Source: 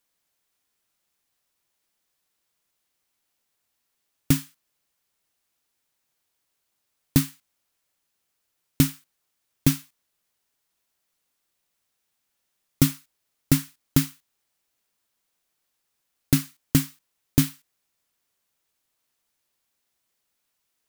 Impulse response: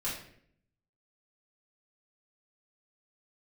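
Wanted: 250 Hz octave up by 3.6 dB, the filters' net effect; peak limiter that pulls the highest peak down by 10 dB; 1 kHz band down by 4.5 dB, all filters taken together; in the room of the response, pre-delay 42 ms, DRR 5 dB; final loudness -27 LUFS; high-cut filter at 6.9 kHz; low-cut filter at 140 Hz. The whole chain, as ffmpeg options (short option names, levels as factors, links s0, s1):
-filter_complex "[0:a]highpass=140,lowpass=6900,equalizer=f=250:t=o:g=5,equalizer=f=1000:t=o:g=-6.5,alimiter=limit=0.2:level=0:latency=1,asplit=2[s0][s1];[1:a]atrim=start_sample=2205,adelay=42[s2];[s1][s2]afir=irnorm=-1:irlink=0,volume=0.335[s3];[s0][s3]amix=inputs=2:normalize=0,volume=1.33"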